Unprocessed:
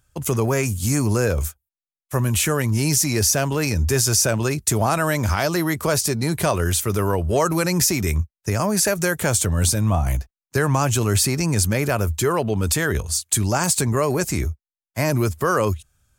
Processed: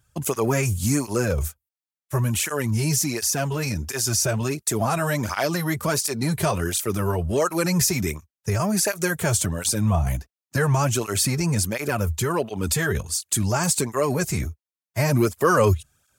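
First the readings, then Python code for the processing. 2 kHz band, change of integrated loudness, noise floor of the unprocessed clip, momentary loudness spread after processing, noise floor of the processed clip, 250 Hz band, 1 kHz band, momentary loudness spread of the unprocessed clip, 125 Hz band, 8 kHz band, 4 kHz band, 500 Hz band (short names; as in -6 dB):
-2.5 dB, -2.5 dB, under -85 dBFS, 6 LU, under -85 dBFS, -2.0 dB, -2.0 dB, 6 LU, -2.5 dB, -3.0 dB, -3.0 dB, -2.0 dB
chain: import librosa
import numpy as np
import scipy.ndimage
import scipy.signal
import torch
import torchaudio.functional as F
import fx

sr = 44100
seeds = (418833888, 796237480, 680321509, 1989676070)

y = fx.rider(x, sr, range_db=10, speed_s=2.0)
y = fx.flanger_cancel(y, sr, hz=1.4, depth_ms=4.2)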